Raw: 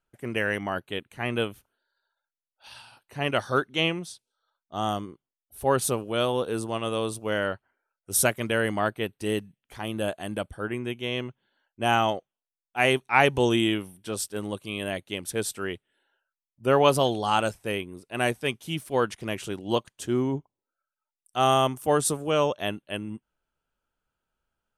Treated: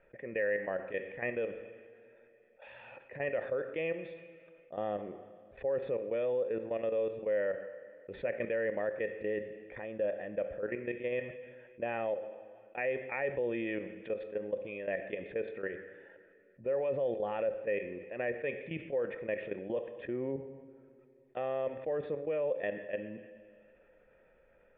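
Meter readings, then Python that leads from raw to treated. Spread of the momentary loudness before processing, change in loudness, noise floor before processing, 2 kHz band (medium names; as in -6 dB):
13 LU, -9.0 dB, under -85 dBFS, -10.5 dB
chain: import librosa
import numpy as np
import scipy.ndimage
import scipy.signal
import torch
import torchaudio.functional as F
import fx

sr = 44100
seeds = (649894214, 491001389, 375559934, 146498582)

y = fx.peak_eq(x, sr, hz=100.0, db=-6.5, octaves=0.26)
y = fx.level_steps(y, sr, step_db=15)
y = fx.formant_cascade(y, sr, vowel='e')
y = fx.rev_double_slope(y, sr, seeds[0], early_s=0.76, late_s=2.0, knee_db=-25, drr_db=13.0)
y = fx.env_flatten(y, sr, amount_pct=50)
y = y * 10.0 ** (4.0 / 20.0)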